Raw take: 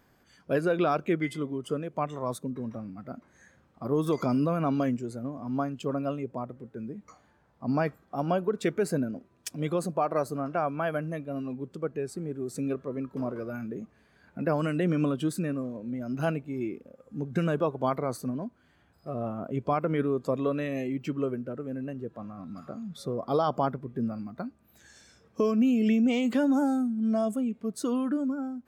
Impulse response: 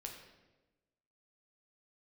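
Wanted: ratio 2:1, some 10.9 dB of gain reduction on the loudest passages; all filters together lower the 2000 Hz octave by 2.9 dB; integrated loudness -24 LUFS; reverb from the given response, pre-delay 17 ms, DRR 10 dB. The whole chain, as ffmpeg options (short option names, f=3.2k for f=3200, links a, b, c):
-filter_complex "[0:a]equalizer=f=2k:t=o:g=-4,acompressor=threshold=-42dB:ratio=2,asplit=2[a][b];[1:a]atrim=start_sample=2205,adelay=17[c];[b][c]afir=irnorm=-1:irlink=0,volume=-7dB[d];[a][d]amix=inputs=2:normalize=0,volume=15.5dB"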